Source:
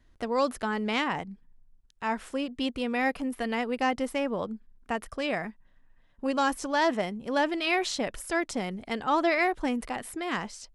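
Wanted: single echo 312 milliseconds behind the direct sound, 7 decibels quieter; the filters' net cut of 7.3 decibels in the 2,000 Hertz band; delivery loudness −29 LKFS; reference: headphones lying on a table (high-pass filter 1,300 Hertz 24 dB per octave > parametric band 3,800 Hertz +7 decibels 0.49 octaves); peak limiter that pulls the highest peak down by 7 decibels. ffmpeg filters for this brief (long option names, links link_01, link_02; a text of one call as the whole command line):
ffmpeg -i in.wav -af "equalizer=frequency=2000:width_type=o:gain=-9,alimiter=limit=-22dB:level=0:latency=1,highpass=frequency=1300:width=0.5412,highpass=frequency=1300:width=1.3066,equalizer=frequency=3800:width_type=o:width=0.49:gain=7,aecho=1:1:312:0.447,volume=10dB" out.wav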